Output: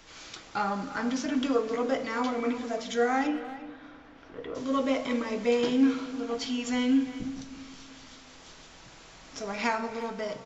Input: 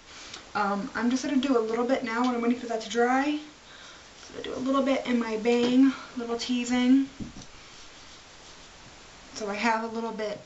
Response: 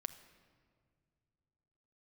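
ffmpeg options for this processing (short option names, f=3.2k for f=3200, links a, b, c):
-filter_complex "[0:a]asettb=1/sr,asplit=3[a][b][c];[a]atrim=end=3.274[d];[b]atrim=start=3.27:end=4.55,asetpts=PTS-STARTPTS,afade=t=in:d=0.004:c=qsin,afade=t=out:st=1.276:d=0.004:c=qsin,lowpass=1.9k[e];[c]atrim=start=4.546[f];[d][e]acrossfade=d=0.004:c1=hsin:c2=qsin[g];[g][f]acrossfade=d=0.004:c1=qsin:c2=hsin,asplit=2[h][i];[i]adelay=350,highpass=300,lowpass=3.4k,asoftclip=type=hard:threshold=-20dB,volume=-14dB[j];[h][j]amix=inputs=2:normalize=0[k];[1:a]atrim=start_sample=2205[l];[k][l]afir=irnorm=-1:irlink=0"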